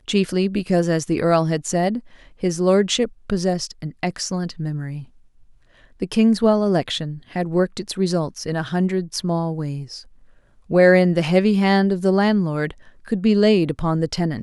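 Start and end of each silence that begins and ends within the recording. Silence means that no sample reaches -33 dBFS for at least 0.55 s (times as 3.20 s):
5.04–6.01 s
10.01–10.70 s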